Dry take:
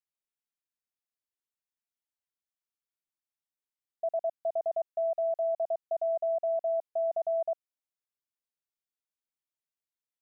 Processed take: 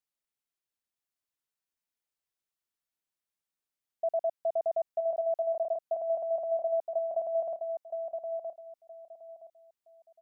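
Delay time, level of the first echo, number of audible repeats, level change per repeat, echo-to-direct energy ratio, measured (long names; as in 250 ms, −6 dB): 969 ms, −6.0 dB, 3, −12.5 dB, −5.5 dB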